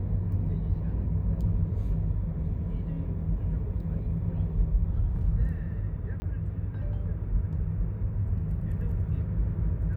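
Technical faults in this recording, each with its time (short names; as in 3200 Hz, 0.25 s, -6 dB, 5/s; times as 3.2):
6.2–6.22 gap 20 ms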